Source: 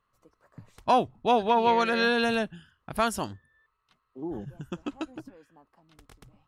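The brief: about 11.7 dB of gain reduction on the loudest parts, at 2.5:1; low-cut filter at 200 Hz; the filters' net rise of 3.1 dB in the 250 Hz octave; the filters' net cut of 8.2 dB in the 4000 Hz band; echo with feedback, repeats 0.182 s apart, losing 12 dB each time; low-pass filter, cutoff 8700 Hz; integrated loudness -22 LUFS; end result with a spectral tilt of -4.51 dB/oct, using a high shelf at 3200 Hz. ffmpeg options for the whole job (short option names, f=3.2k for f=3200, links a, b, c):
-af "highpass=200,lowpass=8.7k,equalizer=f=250:t=o:g=5.5,highshelf=f=3.2k:g=-4,equalizer=f=4k:t=o:g=-7.5,acompressor=threshold=-35dB:ratio=2.5,aecho=1:1:182|364|546:0.251|0.0628|0.0157,volume=14.5dB"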